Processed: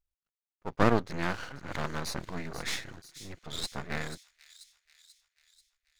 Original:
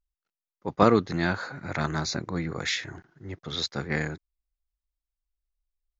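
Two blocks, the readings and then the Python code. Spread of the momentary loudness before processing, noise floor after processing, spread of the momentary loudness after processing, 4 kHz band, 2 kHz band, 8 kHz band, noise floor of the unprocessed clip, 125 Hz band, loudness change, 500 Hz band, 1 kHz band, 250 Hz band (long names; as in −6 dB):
20 LU, below −85 dBFS, 20 LU, −6.0 dB, −5.0 dB, can't be measured, below −85 dBFS, −5.5 dB, −6.0 dB, −6.0 dB, −5.0 dB, −6.0 dB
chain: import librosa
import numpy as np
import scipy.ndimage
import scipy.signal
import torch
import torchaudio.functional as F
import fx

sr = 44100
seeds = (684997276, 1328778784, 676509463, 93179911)

y = np.maximum(x, 0.0)
y = fx.echo_wet_highpass(y, sr, ms=487, feedback_pct=55, hz=4600.0, wet_db=-8.5)
y = F.gain(torch.from_numpy(y), -1.5).numpy()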